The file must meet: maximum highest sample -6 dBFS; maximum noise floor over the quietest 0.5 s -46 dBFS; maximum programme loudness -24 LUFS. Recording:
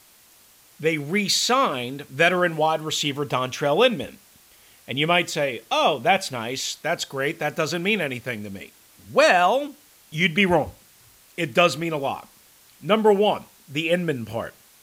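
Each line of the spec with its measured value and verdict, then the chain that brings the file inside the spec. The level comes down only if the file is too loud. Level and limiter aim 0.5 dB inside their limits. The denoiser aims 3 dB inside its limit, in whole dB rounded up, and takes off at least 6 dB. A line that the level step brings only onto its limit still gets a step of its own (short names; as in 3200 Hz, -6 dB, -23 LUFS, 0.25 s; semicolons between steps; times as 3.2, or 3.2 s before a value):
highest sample -5.0 dBFS: fail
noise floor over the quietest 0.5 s -54 dBFS: OK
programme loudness -22.0 LUFS: fail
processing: gain -2.5 dB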